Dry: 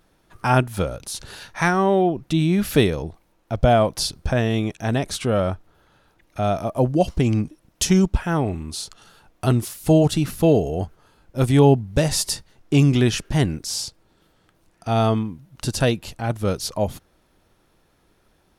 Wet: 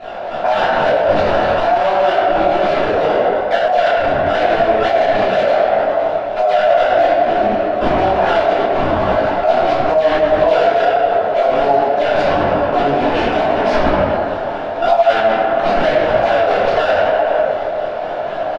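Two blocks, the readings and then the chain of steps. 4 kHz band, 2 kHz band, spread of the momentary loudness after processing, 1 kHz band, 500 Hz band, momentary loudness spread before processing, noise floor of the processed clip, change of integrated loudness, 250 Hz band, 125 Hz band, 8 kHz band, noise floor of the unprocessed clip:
+3.0 dB, +11.0 dB, 4 LU, +13.5 dB, +11.0 dB, 14 LU, -22 dBFS, +6.5 dB, -2.0 dB, -9.0 dB, under -15 dB, -63 dBFS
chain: per-bin compression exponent 0.6; in parallel at -0.5 dB: vocal rider 0.5 s; on the sum: soft clip -9 dBFS, distortion -9 dB; resonant high-pass 640 Hz, resonance Q 4.9; decimation with a swept rate 12×, swing 160% 4 Hz; air absorption 330 m; on a send: tape echo 97 ms, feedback 83%, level -5 dB, low-pass 2900 Hz; on the sum: shoebox room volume 240 m³, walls mixed, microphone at 3.1 m; downsampling 22050 Hz; maximiser 0 dB; detuned doubles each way 30 cents; gain -1.5 dB

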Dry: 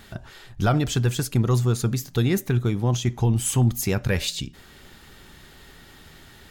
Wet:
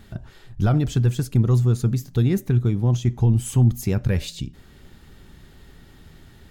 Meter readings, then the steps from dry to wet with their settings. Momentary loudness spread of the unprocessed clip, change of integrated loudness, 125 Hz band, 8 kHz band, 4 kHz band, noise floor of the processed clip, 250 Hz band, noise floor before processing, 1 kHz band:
6 LU, +2.5 dB, +3.5 dB, -7.0 dB, -7.0 dB, -49 dBFS, +1.5 dB, -49 dBFS, -5.0 dB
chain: low shelf 400 Hz +11.5 dB; gain -7 dB

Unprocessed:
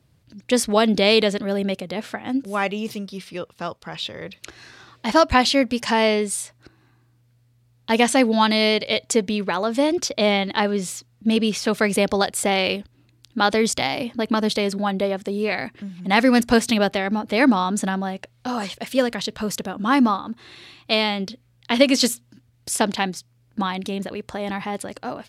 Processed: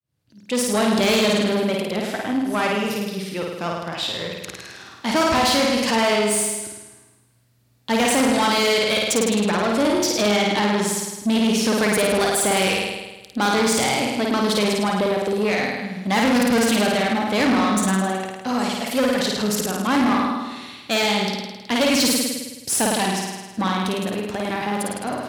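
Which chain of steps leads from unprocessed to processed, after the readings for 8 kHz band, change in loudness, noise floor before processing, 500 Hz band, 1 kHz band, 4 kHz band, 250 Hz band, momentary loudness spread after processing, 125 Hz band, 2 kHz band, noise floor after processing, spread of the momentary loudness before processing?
+5.0 dB, +1.0 dB, -60 dBFS, +0.5 dB, +1.0 dB, +1.5 dB, +1.0 dB, 10 LU, +2.0 dB, +1.0 dB, -50 dBFS, 15 LU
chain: opening faded in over 1.01 s; high shelf 8200 Hz +5.5 dB; flutter echo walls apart 9.1 m, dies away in 1.1 s; tube stage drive 18 dB, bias 0.35; HPF 74 Hz; gain +3 dB

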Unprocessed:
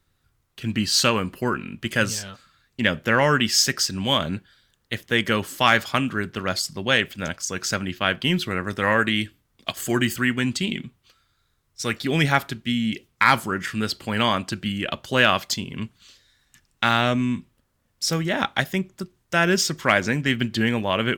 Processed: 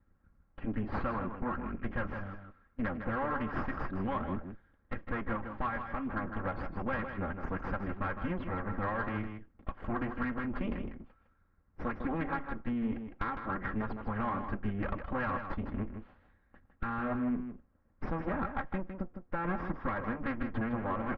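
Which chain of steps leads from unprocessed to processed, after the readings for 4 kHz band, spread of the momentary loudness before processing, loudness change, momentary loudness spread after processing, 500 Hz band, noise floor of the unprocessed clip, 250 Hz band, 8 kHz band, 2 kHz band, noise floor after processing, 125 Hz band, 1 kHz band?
-35.5 dB, 11 LU, -14.0 dB, 8 LU, -13.0 dB, -69 dBFS, -10.0 dB, under -40 dB, -17.0 dB, -69 dBFS, -11.5 dB, -11.0 dB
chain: minimum comb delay 3.7 ms; LPF 1700 Hz 24 dB/oct; low shelf 180 Hz +8.5 dB; harmonic-percussive split harmonic -5 dB; dynamic EQ 1100 Hz, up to +5 dB, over -42 dBFS, Q 1.7; compressor 10:1, threshold -30 dBFS, peak gain reduction 16.5 dB; soft clip -20.5 dBFS, distortion -26 dB; echo 0.157 s -8 dB

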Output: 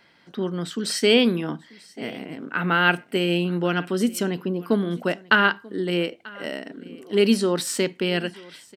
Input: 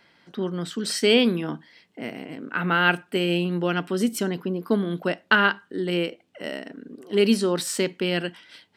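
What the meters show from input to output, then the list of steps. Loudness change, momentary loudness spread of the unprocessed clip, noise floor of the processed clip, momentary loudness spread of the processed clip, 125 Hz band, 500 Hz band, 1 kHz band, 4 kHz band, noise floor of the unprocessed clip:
+1.0 dB, 17 LU, -57 dBFS, 16 LU, +1.0 dB, +1.0 dB, +1.0 dB, +1.0 dB, -63 dBFS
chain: echo 0.938 s -22.5 dB; gain +1 dB

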